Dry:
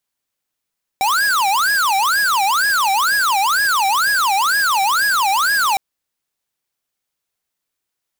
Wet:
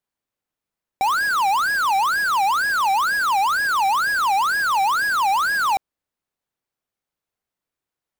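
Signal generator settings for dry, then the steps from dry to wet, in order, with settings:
siren wail 770–1670 Hz 2.1 per s square -16 dBFS 4.76 s
treble shelf 2.1 kHz -11 dB

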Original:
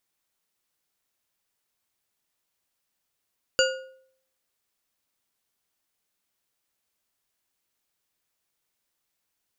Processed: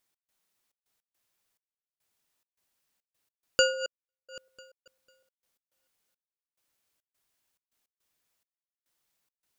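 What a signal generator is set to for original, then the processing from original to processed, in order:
metal hit bar, lowest mode 525 Hz, decay 0.64 s, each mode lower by 1.5 dB, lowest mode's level -18.5 dB
backward echo that repeats 249 ms, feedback 46%, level -9 dB; trance gate "x.xxx.x.xxx...xx" 105 bpm -60 dB

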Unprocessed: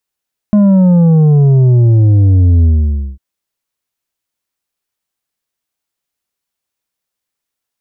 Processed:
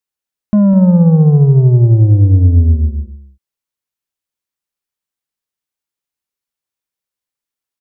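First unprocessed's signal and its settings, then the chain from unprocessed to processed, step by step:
sub drop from 210 Hz, over 2.65 s, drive 6.5 dB, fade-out 0.54 s, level -5.5 dB
band-stop 680 Hz, Q 12; on a send: delay 203 ms -11 dB; on the sum: upward expansion 1.5:1, over -19 dBFS

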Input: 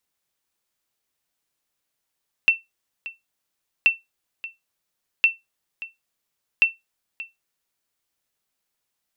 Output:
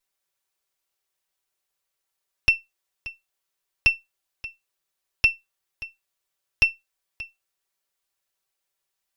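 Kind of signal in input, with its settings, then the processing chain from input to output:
sonar ping 2.69 kHz, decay 0.18 s, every 1.38 s, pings 4, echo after 0.58 s, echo -17.5 dB -7.5 dBFS
comb filter that takes the minimum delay 5.2 ms; peaking EQ 210 Hz -14.5 dB 0.57 oct

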